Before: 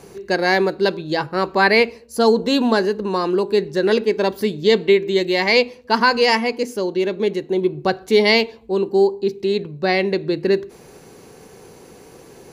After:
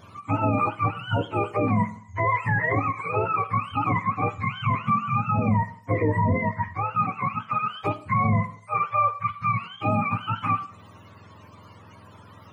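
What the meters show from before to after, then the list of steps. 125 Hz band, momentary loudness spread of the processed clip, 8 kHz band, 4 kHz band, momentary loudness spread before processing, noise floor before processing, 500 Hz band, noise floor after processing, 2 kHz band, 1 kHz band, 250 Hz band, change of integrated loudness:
+7.0 dB, 5 LU, under -20 dB, -19.5 dB, 8 LU, -45 dBFS, -15.0 dB, -49 dBFS, -9.0 dB, -0.5 dB, -7.5 dB, -6.5 dB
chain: spectrum inverted on a logarithmic axis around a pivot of 680 Hz; peak limiter -11.5 dBFS, peak gain reduction 10.5 dB; Schroeder reverb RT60 0.59 s, combs from 29 ms, DRR 17.5 dB; endings held to a fixed fall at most 330 dB/s; trim -2.5 dB

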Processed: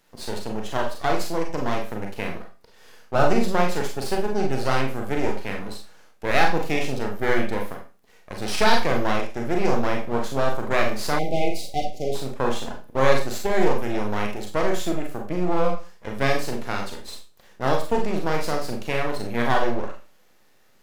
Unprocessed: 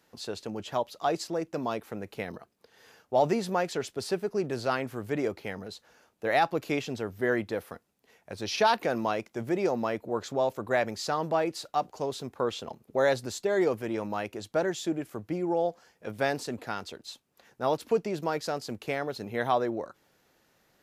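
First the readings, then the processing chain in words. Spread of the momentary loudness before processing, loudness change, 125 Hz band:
12 LU, +5.0 dB, +9.0 dB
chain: half-wave rectifier; Schroeder reverb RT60 0.33 s, combs from 30 ms, DRR 1 dB; spectral selection erased 11.19–12.15 s, 800–2000 Hz; trim +6.5 dB

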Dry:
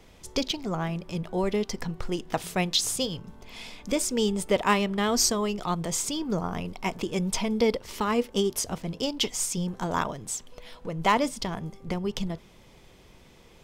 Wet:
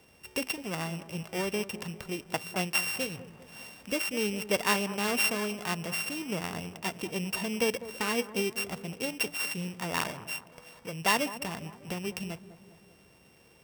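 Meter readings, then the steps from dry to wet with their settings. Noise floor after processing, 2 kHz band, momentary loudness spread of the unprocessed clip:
-59 dBFS, +2.5 dB, 11 LU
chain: sorted samples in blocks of 16 samples; high-pass 100 Hz 12 dB/octave; peaking EQ 250 Hz -3.5 dB 2 oct; on a send: feedback echo behind a low-pass 201 ms, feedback 52%, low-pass 1.3 kHz, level -13.5 dB; on the sum: trim -3 dB

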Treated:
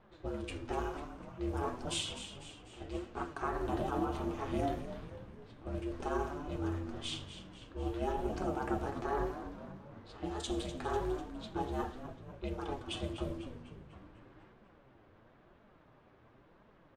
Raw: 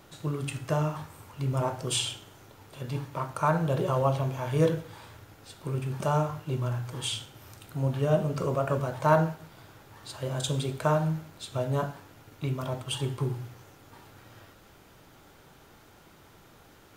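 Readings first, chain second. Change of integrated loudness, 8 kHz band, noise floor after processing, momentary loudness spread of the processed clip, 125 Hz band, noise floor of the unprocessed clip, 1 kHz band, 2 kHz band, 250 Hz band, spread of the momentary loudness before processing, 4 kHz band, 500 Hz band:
-9.0 dB, -10.5 dB, -63 dBFS, 14 LU, -14.5 dB, -56 dBFS, -7.0 dB, -7.5 dB, -5.0 dB, 17 LU, -7.5 dB, -8.5 dB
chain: peak limiter -18 dBFS, peak gain reduction 10 dB; treble shelf 11 kHz -5.5 dB; level-controlled noise filter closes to 2.9 kHz, open at -23.5 dBFS; ring modulator 210 Hz; flange 0.96 Hz, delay 4.3 ms, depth 6 ms, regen +36%; frequency-shifting echo 248 ms, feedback 60%, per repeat -92 Hz, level -10.5 dB; tape noise reduction on one side only decoder only

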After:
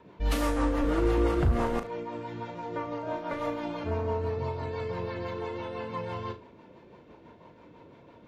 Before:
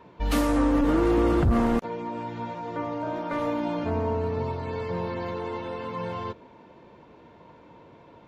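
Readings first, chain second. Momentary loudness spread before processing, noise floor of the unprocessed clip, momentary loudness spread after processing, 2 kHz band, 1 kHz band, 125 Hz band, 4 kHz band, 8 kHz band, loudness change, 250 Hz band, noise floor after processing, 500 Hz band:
12 LU, -52 dBFS, 12 LU, -2.5 dB, -4.0 dB, -2.0 dB, -2.0 dB, no reading, -4.0 dB, -6.5 dB, -54 dBFS, -3.0 dB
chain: dynamic bell 240 Hz, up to -7 dB, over -38 dBFS, Q 1.1; rotary cabinet horn 6 Hz; flutter echo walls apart 6.3 m, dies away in 0.25 s

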